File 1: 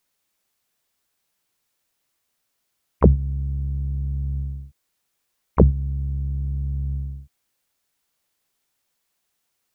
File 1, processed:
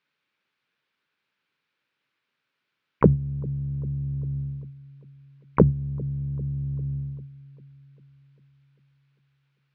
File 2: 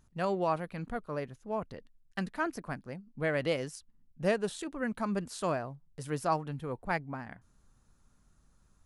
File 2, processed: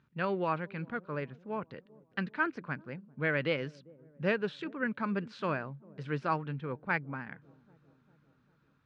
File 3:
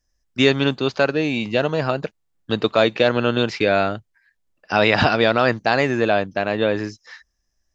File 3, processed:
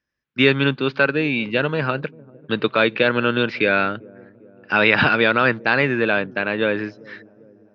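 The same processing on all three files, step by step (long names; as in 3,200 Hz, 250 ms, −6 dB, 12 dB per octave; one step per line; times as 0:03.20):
loudspeaker in its box 140–3,900 Hz, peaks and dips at 140 Hz +5 dB, 700 Hz −9 dB, 1,500 Hz +6 dB, 2,400 Hz +5 dB
delay with a low-pass on its return 397 ms, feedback 57%, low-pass 500 Hz, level −21 dB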